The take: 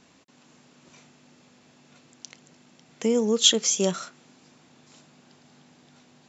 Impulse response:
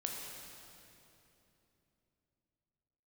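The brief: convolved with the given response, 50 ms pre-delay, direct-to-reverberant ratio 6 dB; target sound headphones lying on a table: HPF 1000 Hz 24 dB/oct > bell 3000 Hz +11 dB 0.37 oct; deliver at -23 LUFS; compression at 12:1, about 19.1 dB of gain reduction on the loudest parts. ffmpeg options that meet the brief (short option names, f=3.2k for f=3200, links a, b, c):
-filter_complex "[0:a]acompressor=threshold=-33dB:ratio=12,asplit=2[a][b];[1:a]atrim=start_sample=2205,adelay=50[c];[b][c]afir=irnorm=-1:irlink=0,volume=-7dB[d];[a][d]amix=inputs=2:normalize=0,highpass=f=1k:w=0.5412,highpass=f=1k:w=1.3066,equalizer=f=3k:t=o:w=0.37:g=11,volume=14dB"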